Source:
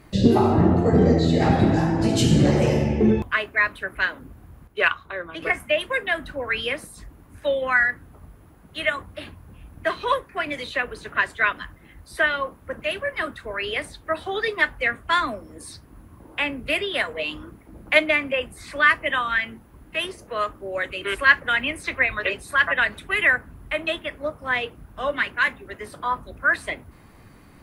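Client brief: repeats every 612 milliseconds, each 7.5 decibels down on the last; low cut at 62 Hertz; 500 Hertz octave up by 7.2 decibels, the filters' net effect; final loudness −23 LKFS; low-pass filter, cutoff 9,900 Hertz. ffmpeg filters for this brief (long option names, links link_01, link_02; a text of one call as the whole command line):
ffmpeg -i in.wav -af "highpass=62,lowpass=9900,equalizer=frequency=500:width_type=o:gain=9,aecho=1:1:612|1224|1836|2448|3060:0.422|0.177|0.0744|0.0312|0.0131,volume=-3dB" out.wav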